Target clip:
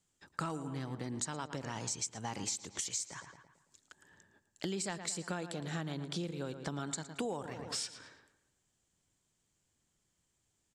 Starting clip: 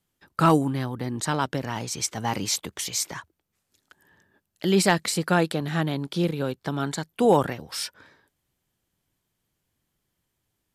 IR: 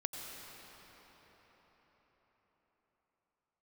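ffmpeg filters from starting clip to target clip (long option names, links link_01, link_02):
-filter_complex "[0:a]lowpass=frequency=7500:width_type=q:width=3.7,asplit=2[link_01][link_02];[link_02]adelay=112,lowpass=frequency=3000:poles=1,volume=-12.5dB,asplit=2[link_03][link_04];[link_04]adelay=112,lowpass=frequency=3000:poles=1,volume=0.49,asplit=2[link_05][link_06];[link_06]adelay=112,lowpass=frequency=3000:poles=1,volume=0.49,asplit=2[link_07][link_08];[link_08]adelay=112,lowpass=frequency=3000:poles=1,volume=0.49,asplit=2[link_09][link_10];[link_10]adelay=112,lowpass=frequency=3000:poles=1,volume=0.49[link_11];[link_01][link_03][link_05][link_07][link_09][link_11]amix=inputs=6:normalize=0,acompressor=threshold=-31dB:ratio=10,volume=-4dB"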